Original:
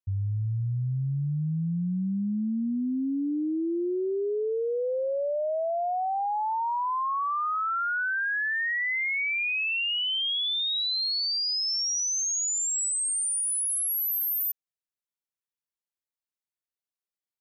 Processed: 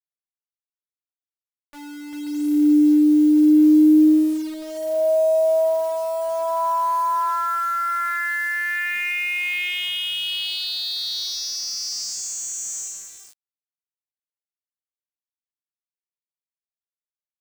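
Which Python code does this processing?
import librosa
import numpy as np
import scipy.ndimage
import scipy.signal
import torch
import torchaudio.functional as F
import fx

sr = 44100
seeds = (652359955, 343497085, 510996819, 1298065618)

y = fx.vocoder_glide(x, sr, note=61, semitones=8)
y = fx.quant_dither(y, sr, seeds[0], bits=8, dither='none')
y = F.gain(torch.from_numpy(y), 8.5).numpy()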